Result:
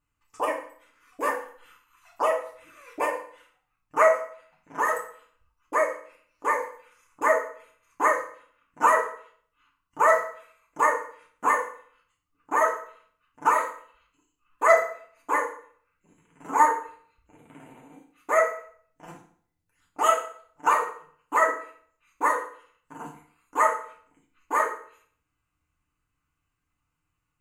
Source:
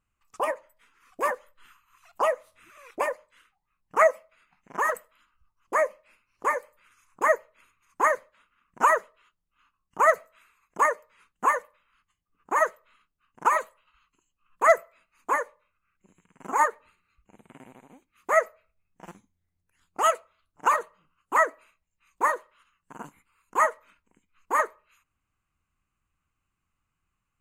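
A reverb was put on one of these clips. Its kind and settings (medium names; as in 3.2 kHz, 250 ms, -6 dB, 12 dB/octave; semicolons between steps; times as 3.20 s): FDN reverb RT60 0.54 s, low-frequency decay 1×, high-frequency decay 0.85×, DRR -3 dB; trim -3.5 dB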